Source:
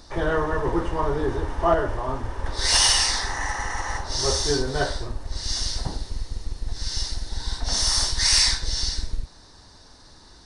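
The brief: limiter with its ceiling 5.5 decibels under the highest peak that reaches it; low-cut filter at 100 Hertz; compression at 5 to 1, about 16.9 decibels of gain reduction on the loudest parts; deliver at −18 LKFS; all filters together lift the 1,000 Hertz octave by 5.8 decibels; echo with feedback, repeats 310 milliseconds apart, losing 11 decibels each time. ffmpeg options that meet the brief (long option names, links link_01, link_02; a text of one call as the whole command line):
ffmpeg -i in.wav -af "highpass=100,equalizer=frequency=1000:width_type=o:gain=7,acompressor=threshold=-31dB:ratio=5,alimiter=level_in=1.5dB:limit=-24dB:level=0:latency=1,volume=-1.5dB,aecho=1:1:310|620|930:0.282|0.0789|0.0221,volume=16.5dB" out.wav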